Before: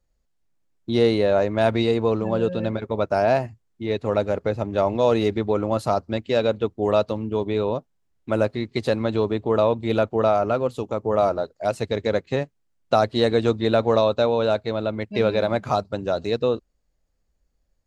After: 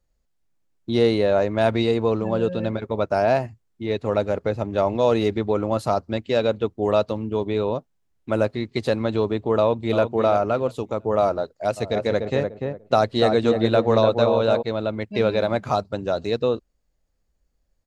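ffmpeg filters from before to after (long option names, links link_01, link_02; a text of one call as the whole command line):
ffmpeg -i in.wav -filter_complex "[0:a]asplit=2[link_01][link_02];[link_02]afade=type=in:start_time=9.58:duration=0.01,afade=type=out:start_time=10.03:duration=0.01,aecho=0:1:340|680|1020:0.354813|0.0709627|0.0141925[link_03];[link_01][link_03]amix=inputs=2:normalize=0,asplit=3[link_04][link_05][link_06];[link_04]afade=type=out:start_time=11.76:duration=0.02[link_07];[link_05]asplit=2[link_08][link_09];[link_09]adelay=294,lowpass=frequency=1200:poles=1,volume=-3.5dB,asplit=2[link_10][link_11];[link_11]adelay=294,lowpass=frequency=1200:poles=1,volume=0.27,asplit=2[link_12][link_13];[link_13]adelay=294,lowpass=frequency=1200:poles=1,volume=0.27,asplit=2[link_14][link_15];[link_15]adelay=294,lowpass=frequency=1200:poles=1,volume=0.27[link_16];[link_08][link_10][link_12][link_14][link_16]amix=inputs=5:normalize=0,afade=type=in:start_time=11.76:duration=0.02,afade=type=out:start_time=14.61:duration=0.02[link_17];[link_06]afade=type=in:start_time=14.61:duration=0.02[link_18];[link_07][link_17][link_18]amix=inputs=3:normalize=0" out.wav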